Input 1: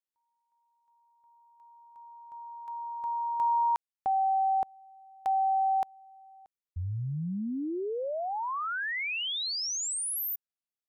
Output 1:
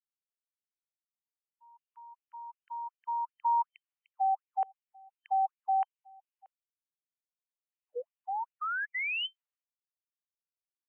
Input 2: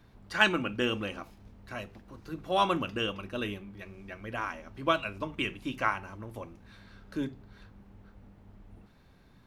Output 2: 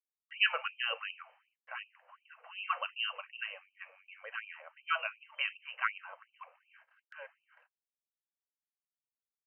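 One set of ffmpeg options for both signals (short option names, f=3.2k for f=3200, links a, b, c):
-af "afftfilt=real='re*between(b*sr/4096,360,3100)':imag='im*between(b*sr/4096,360,3100)':win_size=4096:overlap=0.75,agate=range=-58dB:threshold=-55dB:ratio=16:release=276:detection=rms,afftfilt=real='re*gte(b*sr/1024,460*pow(2400/460,0.5+0.5*sin(2*PI*2.7*pts/sr)))':imag='im*gte(b*sr/1024,460*pow(2400/460,0.5+0.5*sin(2*PI*2.7*pts/sr)))':win_size=1024:overlap=0.75"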